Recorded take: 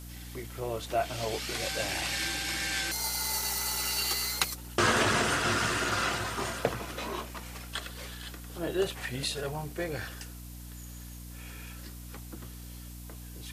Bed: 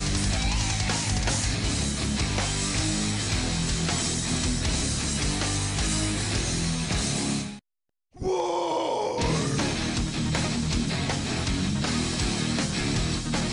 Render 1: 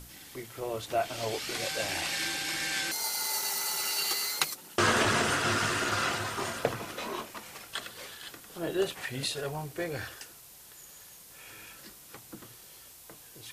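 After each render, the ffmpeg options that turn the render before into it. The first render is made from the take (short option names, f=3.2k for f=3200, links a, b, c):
-af "bandreject=f=60:t=h:w=6,bandreject=f=120:t=h:w=6,bandreject=f=180:t=h:w=6,bandreject=f=240:t=h:w=6,bandreject=f=300:t=h:w=6"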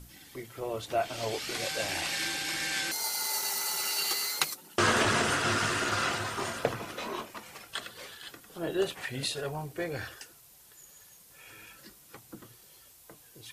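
-af "afftdn=nr=6:nf=-52"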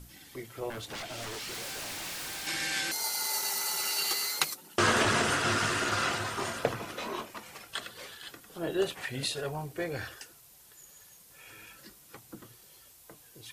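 -filter_complex "[0:a]asettb=1/sr,asplit=3[a][b][c];[a]atrim=end=0.704[d];[b]atrim=start=0.7:end=2.47,asetpts=PTS-STARTPTS,afade=t=in:d=0.004:c=qsin,afade=t=out:st=1.766:d=0.004:c=qsin,aeval=exprs='0.02*(abs(mod(val(0)/0.02+3,4)-2)-1)':c=same[e];[c]atrim=start=2.466[f];[d][e]acrossfade=d=0.004:c1=hsin:c2=qsin[g];[g][f]acrossfade=d=0.004:c1=qsin:c2=hsin"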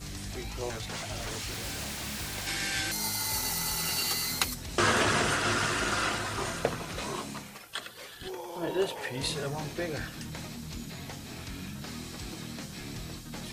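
-filter_complex "[1:a]volume=-14dB[a];[0:a][a]amix=inputs=2:normalize=0"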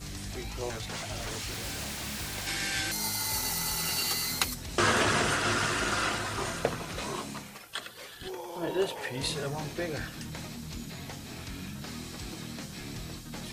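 -af anull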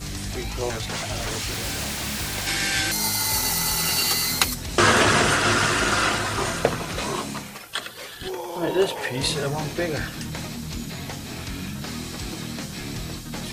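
-af "volume=8dB"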